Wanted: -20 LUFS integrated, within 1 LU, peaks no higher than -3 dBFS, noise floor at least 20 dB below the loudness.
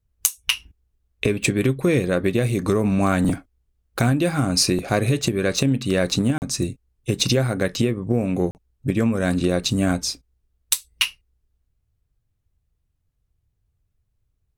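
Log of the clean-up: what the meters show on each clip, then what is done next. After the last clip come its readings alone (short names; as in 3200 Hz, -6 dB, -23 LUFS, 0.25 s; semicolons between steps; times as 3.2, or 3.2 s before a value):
dropouts 2; longest dropout 39 ms; loudness -22.0 LUFS; peak -1.5 dBFS; loudness target -20.0 LUFS
-> interpolate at 6.38/8.51, 39 ms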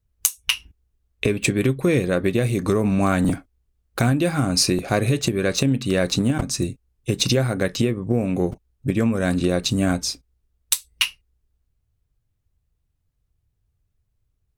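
dropouts 0; loudness -22.0 LUFS; peak -1.5 dBFS; loudness target -20.0 LUFS
-> gain +2 dB; limiter -3 dBFS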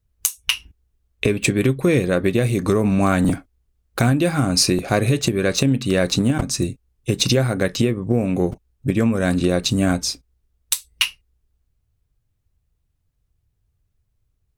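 loudness -20.0 LUFS; peak -3.0 dBFS; noise floor -71 dBFS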